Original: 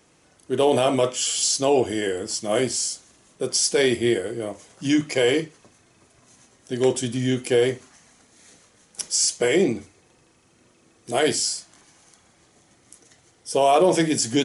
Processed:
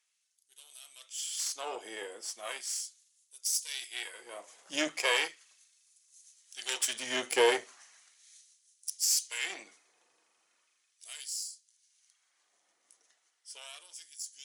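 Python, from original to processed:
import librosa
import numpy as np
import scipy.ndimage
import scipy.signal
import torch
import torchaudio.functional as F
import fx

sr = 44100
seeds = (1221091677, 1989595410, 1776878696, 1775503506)

y = fx.doppler_pass(x, sr, speed_mps=9, closest_m=13.0, pass_at_s=6.66)
y = fx.cheby_harmonics(y, sr, harmonics=(4, 7, 8), levels_db=(-23, -34, -24), full_scale_db=-7.5)
y = fx.filter_lfo_highpass(y, sr, shape='sine', hz=0.37, low_hz=620.0, high_hz=6000.0, q=0.79)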